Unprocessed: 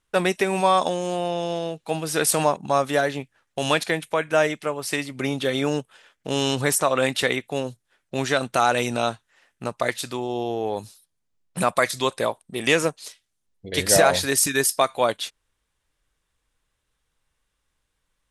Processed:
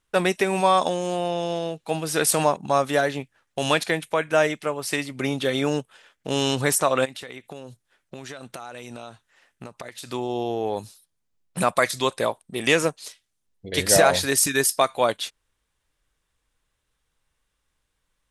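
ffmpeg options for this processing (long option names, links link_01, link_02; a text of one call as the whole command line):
ffmpeg -i in.wav -filter_complex "[0:a]asplit=3[link_01][link_02][link_03];[link_01]afade=type=out:start_time=7.04:duration=0.02[link_04];[link_02]acompressor=threshold=-33dB:ratio=12:attack=3.2:release=140:knee=1:detection=peak,afade=type=in:start_time=7.04:duration=0.02,afade=type=out:start_time=10.08:duration=0.02[link_05];[link_03]afade=type=in:start_time=10.08:duration=0.02[link_06];[link_04][link_05][link_06]amix=inputs=3:normalize=0" out.wav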